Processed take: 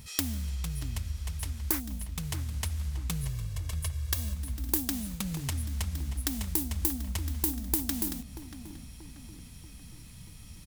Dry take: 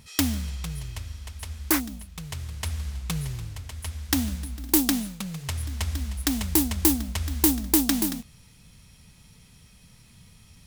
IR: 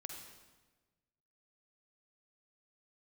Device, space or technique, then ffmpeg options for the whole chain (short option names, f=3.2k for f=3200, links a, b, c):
ASMR close-microphone chain: -filter_complex "[0:a]asettb=1/sr,asplit=3[a][b][c];[a]atrim=end=3.234[d];[b]atrim=start=3.23:end=4.35,asetpts=PTS-STARTPTS,afade=t=in:d=0.004:c=qsin,afade=t=out:st=1.116:d=0.004:c=qsin,aecho=1:1:1.8:0.98,atrim=end_sample=49392[e];[c]atrim=start=4.346[f];[d][e]acrossfade=d=0.004:c1=hsin:c2=qsin[g];[g][f]acrossfade=d=0.004:c1=qsin:c2=hsin,lowshelf=f=120:g=7,acompressor=threshold=-31dB:ratio=5,highshelf=f=8.3k:g=8,asplit=2[h][i];[i]adelay=634,lowpass=f=2.1k:p=1,volume=-11dB,asplit=2[j][k];[k]adelay=634,lowpass=f=2.1k:p=1,volume=0.5,asplit=2[l][m];[m]adelay=634,lowpass=f=2.1k:p=1,volume=0.5,asplit=2[n][o];[o]adelay=634,lowpass=f=2.1k:p=1,volume=0.5,asplit=2[p][q];[q]adelay=634,lowpass=f=2.1k:p=1,volume=0.5[r];[h][j][l][n][p][r]amix=inputs=6:normalize=0"